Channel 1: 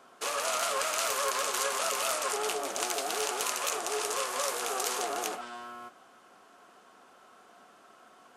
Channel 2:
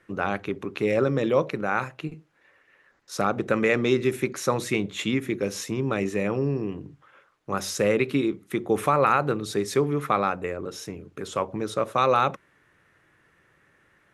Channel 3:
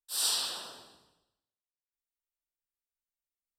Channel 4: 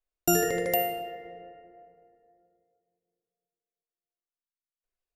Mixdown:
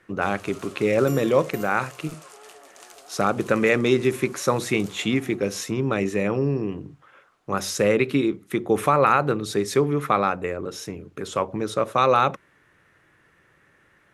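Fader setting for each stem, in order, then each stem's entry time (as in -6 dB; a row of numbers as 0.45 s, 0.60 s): -15.0 dB, +2.5 dB, mute, -15.0 dB; 0.00 s, 0.00 s, mute, 0.80 s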